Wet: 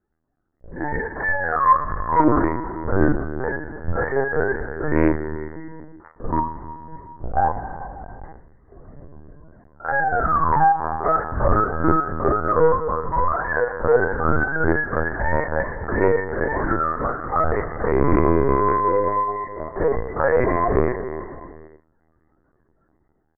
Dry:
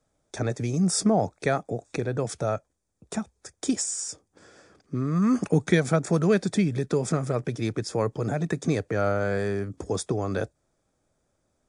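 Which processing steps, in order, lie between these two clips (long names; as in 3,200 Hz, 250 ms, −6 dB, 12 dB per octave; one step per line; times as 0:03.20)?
frequency axis turned over on the octave scale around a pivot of 640 Hz
comb filter 6.3 ms, depth 93%
automatic gain control gain up to 12 dB
asymmetric clip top −15.5 dBFS, bottom −3.5 dBFS
reverb whose tail is shaped and stops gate 460 ms falling, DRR 7 dB
linear-prediction vocoder at 8 kHz pitch kept
wrong playback speed 15 ips tape played at 7.5 ips
highs frequency-modulated by the lows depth 0.17 ms
level −1 dB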